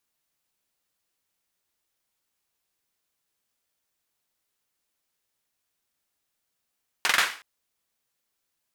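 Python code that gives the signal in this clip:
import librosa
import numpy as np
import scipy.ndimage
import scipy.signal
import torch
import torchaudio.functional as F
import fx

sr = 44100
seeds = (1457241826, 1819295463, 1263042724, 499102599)

y = fx.drum_clap(sr, seeds[0], length_s=0.37, bursts=4, spacing_ms=44, hz=1700.0, decay_s=0.4)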